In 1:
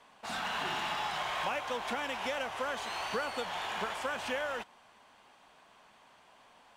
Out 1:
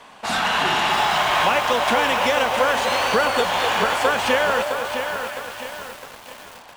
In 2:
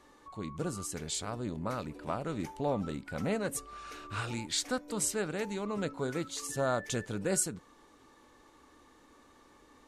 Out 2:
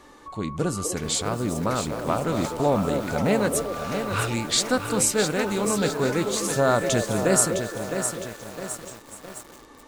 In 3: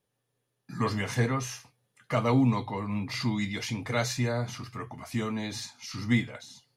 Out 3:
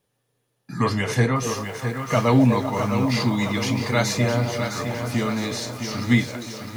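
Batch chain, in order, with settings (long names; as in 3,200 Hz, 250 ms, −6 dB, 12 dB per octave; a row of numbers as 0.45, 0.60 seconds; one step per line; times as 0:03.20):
echo through a band-pass that steps 249 ms, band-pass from 480 Hz, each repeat 0.7 octaves, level −5 dB
feedback echo at a low word length 660 ms, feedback 55%, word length 8 bits, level −7 dB
normalise the peak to −6 dBFS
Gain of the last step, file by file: +15.0, +10.0, +6.5 decibels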